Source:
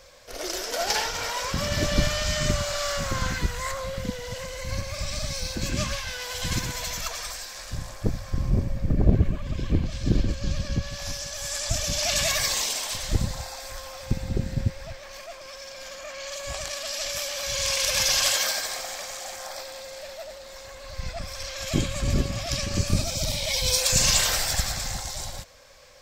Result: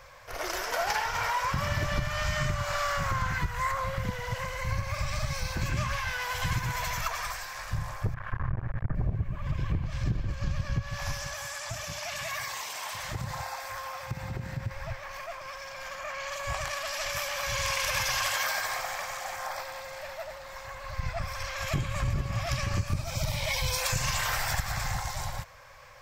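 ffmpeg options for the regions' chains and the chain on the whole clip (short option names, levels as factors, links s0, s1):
-filter_complex "[0:a]asettb=1/sr,asplit=3[s0][s1][s2];[s0]atrim=end=8.144[s3];[s1]atrim=start=8.14:end=8.95,asetpts=PTS-STARTPTS,afade=t=in:d=0.004:c=qsin,afade=t=out:st=0.806:d=0.004:c=qsin,lowpass=f=1600:t=q:w=3.7,aeval=exprs='max(val(0),0)':c=same[s4];[s2]atrim=start=8.946[s5];[s3][s4]acrossfade=d=0.004:c1=hsin:c2=qsin[s6];[s6][s5]acrossfade=d=0.004:c1=qsin:c2=hsin,asettb=1/sr,asplit=3[s7][s8][s9];[s7]atrim=end=11.344[s10];[s8]atrim=start=11.34:end=14.71,asetpts=PTS-STARTPTS,afade=t=in:d=0.004:c=qsin,afade=t=out:st=3.366:d=0.004:c=qsin,highpass=f=200:p=1,acompressor=threshold=0.0282:ratio=5:attack=3.2:release=140:knee=1:detection=peak[s11];[s9]atrim=start=14.706[s12];[s10][s11]acrossfade=d=0.004:c1=hsin:c2=qsin[s13];[s13][s12]acrossfade=d=0.004:c1=qsin:c2=hsin,equalizer=f=125:t=o:w=1:g=8,equalizer=f=250:t=o:w=1:g=-9,equalizer=f=500:t=o:w=1:g=-4,equalizer=f=1000:t=o:w=1:g=8,equalizer=f=2000:t=o:w=1:g=4,equalizer=f=4000:t=o:w=1:g=-6,equalizer=f=8000:t=o:w=1:g=-6,acompressor=threshold=0.0562:ratio=8"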